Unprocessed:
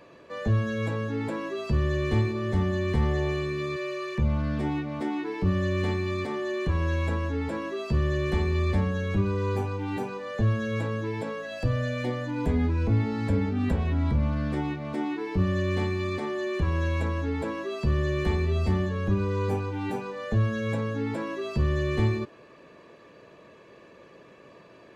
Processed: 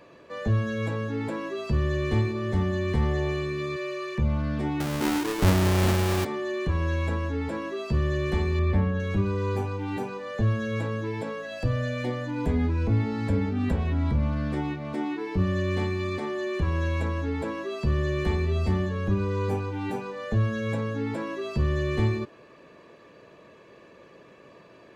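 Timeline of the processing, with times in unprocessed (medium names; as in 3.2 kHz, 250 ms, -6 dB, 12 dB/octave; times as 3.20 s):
4.80–6.25 s: square wave that keeps the level
8.59–9.00 s: tone controls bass +2 dB, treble -14 dB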